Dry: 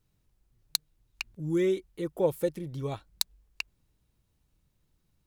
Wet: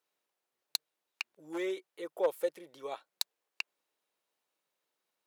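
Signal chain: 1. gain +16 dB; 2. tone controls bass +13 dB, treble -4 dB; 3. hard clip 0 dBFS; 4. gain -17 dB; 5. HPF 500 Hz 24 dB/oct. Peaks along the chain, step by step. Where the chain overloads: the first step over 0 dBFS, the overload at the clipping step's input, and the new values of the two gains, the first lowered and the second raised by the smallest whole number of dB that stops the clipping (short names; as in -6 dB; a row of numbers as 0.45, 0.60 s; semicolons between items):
+8.5, +7.0, 0.0, -17.0, -14.5 dBFS; step 1, 7.0 dB; step 1 +9 dB, step 4 -10 dB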